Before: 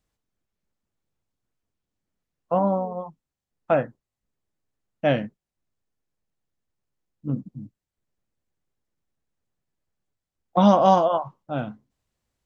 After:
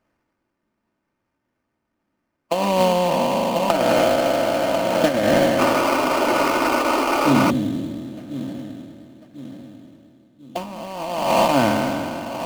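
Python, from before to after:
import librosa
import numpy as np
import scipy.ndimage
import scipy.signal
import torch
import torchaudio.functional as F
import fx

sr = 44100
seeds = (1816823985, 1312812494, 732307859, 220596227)

y = fx.spec_trails(x, sr, decay_s=2.53)
y = fx.notch(y, sr, hz=600.0, q=12.0)
y = fx.over_compress(y, sr, threshold_db=-22.0, ratio=-0.5)
y = scipy.signal.sosfilt(scipy.signal.butter(2, 130.0, 'highpass', fs=sr, output='sos'), y)
y = fx.echo_feedback(y, sr, ms=1044, feedback_pct=43, wet_db=-12.0)
y = fx.spec_paint(y, sr, seeds[0], shape='noise', start_s=5.58, length_s=1.93, low_hz=240.0, high_hz=1500.0, level_db=-24.0)
y = fx.sample_hold(y, sr, seeds[1], rate_hz=3700.0, jitter_pct=20)
y = fx.high_shelf(y, sr, hz=3800.0, db=-9.0)
y = y + 0.44 * np.pad(y, (int(3.3 * sr / 1000.0), 0))[:len(y)]
y = fx.band_squash(y, sr, depth_pct=100, at=(2.8, 5.19))
y = y * librosa.db_to_amplitude(4.5)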